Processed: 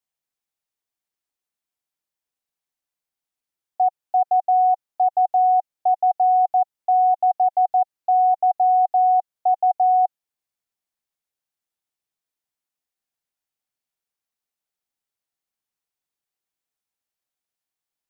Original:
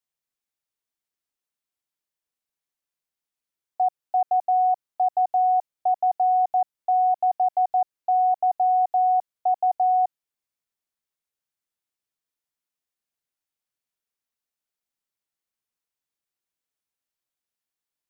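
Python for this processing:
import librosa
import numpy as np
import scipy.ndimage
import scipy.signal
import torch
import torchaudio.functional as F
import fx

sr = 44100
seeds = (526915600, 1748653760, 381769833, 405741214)

y = fx.peak_eq(x, sr, hz=770.0, db=4.0, octaves=0.29)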